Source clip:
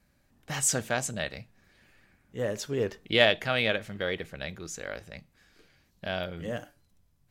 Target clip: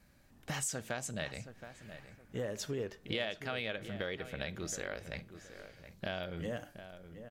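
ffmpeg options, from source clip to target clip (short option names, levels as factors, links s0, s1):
-filter_complex "[0:a]acompressor=threshold=0.0112:ratio=5,asplit=2[s0][s1];[s1]adelay=721,lowpass=f=2200:p=1,volume=0.282,asplit=2[s2][s3];[s3]adelay=721,lowpass=f=2200:p=1,volume=0.35,asplit=2[s4][s5];[s5]adelay=721,lowpass=f=2200:p=1,volume=0.35,asplit=2[s6][s7];[s7]adelay=721,lowpass=f=2200:p=1,volume=0.35[s8];[s2][s4][s6][s8]amix=inputs=4:normalize=0[s9];[s0][s9]amix=inputs=2:normalize=0,volume=1.41"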